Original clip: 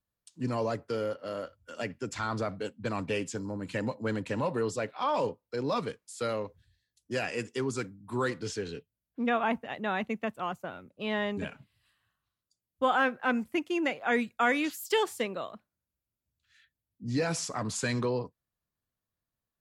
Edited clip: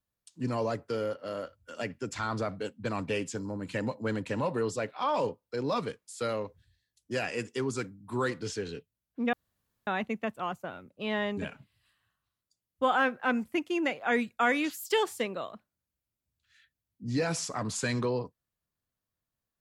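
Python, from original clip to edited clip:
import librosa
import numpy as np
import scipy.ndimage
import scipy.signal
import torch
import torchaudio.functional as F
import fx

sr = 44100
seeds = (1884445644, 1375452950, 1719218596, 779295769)

y = fx.edit(x, sr, fx.room_tone_fill(start_s=9.33, length_s=0.54), tone=tone)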